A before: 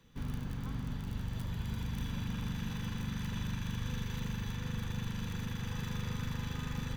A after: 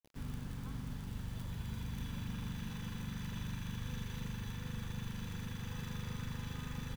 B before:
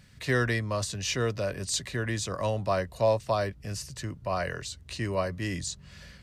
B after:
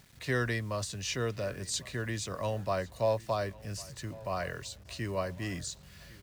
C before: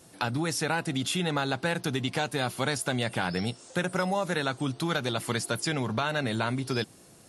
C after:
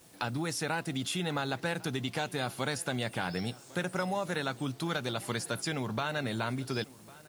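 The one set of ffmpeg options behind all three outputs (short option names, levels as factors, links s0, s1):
-filter_complex "[0:a]acrusher=bits=8:mix=0:aa=0.000001,asplit=2[s0][s1];[s1]adelay=1102,lowpass=f=4500:p=1,volume=0.0891,asplit=2[s2][s3];[s3]adelay=1102,lowpass=f=4500:p=1,volume=0.44,asplit=2[s4][s5];[s5]adelay=1102,lowpass=f=4500:p=1,volume=0.44[s6];[s0][s2][s4][s6]amix=inputs=4:normalize=0,volume=0.596"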